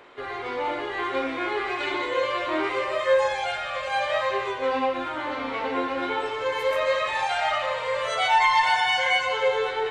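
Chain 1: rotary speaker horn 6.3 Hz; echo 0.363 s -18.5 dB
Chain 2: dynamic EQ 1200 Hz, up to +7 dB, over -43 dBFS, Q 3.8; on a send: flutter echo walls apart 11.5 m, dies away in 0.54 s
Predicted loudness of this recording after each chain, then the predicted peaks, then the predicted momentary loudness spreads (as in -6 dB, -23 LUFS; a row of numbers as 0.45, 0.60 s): -27.5, -22.5 LUFS; -10.5, -6.5 dBFS; 9, 8 LU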